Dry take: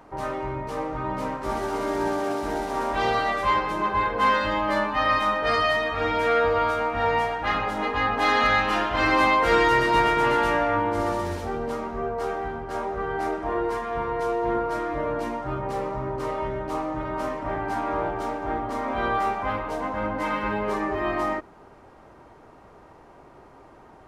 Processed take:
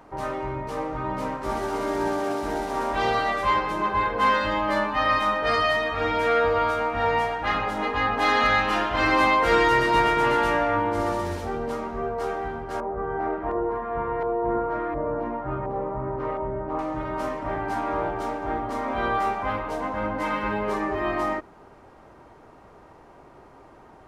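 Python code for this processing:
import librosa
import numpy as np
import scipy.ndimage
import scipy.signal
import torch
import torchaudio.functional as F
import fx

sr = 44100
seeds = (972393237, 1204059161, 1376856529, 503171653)

y = fx.filter_lfo_lowpass(x, sr, shape='saw_up', hz=1.4, low_hz=860.0, high_hz=2100.0, q=0.81, at=(12.8, 16.79))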